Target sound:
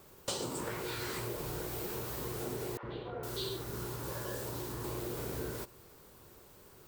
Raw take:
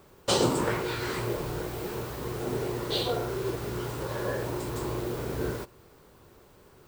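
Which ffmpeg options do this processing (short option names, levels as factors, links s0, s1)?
-filter_complex "[0:a]aemphasis=mode=production:type=cd,acompressor=threshold=0.0251:ratio=6,asettb=1/sr,asplit=3[s0][s1][s2];[s0]atrim=end=2.774[s3];[s1]atrim=start=2.77:end=4.84,asetpts=PTS-STARTPTS,afade=t=in:d=0.004:c=qsin,afade=t=out:st=2.066:d=0.004:c=qsin,acrossover=split=560|2400[s4][s5][s6];[s4]adelay=60[s7];[s6]adelay=460[s8];[s7][s5][s8]amix=inputs=3:normalize=0,atrim=end_sample=91287[s9];[s2]atrim=start=4.836[s10];[s3][s9]acrossfade=d=0.004:c1=hsin:c2=qsin[s11];[s11][s10]acrossfade=d=0.004:c1=qsin:c2=hsin,volume=0.708"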